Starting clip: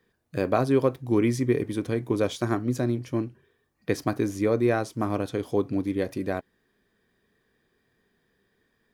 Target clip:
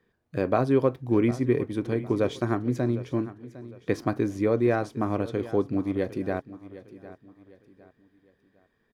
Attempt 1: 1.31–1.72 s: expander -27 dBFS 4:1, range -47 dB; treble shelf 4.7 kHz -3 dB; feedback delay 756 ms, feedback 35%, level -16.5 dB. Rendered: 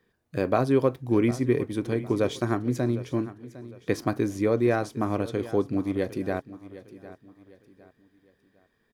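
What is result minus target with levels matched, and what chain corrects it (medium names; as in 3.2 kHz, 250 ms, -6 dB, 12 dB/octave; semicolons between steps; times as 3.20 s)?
8 kHz band +6.0 dB
1.31–1.72 s: expander -27 dBFS 4:1, range -47 dB; treble shelf 4.7 kHz -11.5 dB; feedback delay 756 ms, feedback 35%, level -16.5 dB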